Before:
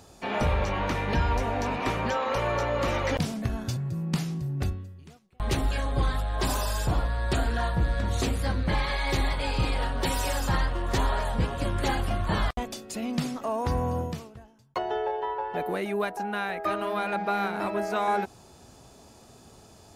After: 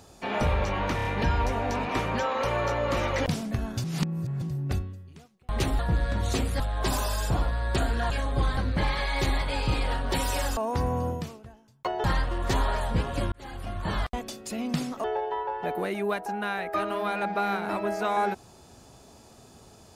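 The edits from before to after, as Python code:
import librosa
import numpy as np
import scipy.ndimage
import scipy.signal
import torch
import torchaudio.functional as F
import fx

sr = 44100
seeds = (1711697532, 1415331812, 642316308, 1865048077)

y = fx.edit(x, sr, fx.stutter(start_s=0.96, slice_s=0.03, count=4),
    fx.reverse_span(start_s=3.75, length_s=0.58),
    fx.swap(start_s=5.7, length_s=0.47, other_s=7.67, other_length_s=0.81),
    fx.fade_in_span(start_s=11.76, length_s=1.22, curve='qsin'),
    fx.move(start_s=13.48, length_s=1.47, to_s=10.48), tone=tone)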